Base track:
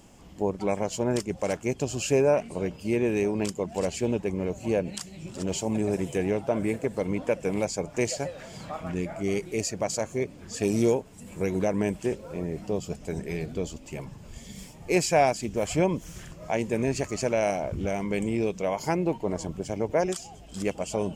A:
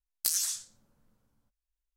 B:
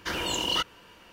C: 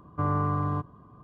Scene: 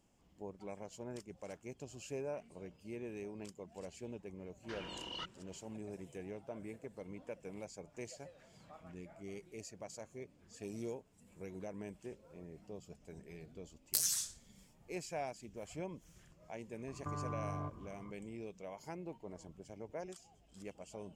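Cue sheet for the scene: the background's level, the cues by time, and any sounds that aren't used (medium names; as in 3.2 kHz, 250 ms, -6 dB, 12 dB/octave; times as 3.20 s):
base track -20 dB
4.63 s: add B -16 dB + distance through air 100 m
13.69 s: add A -4.5 dB
16.88 s: add C -4 dB + compression, threshold -34 dBFS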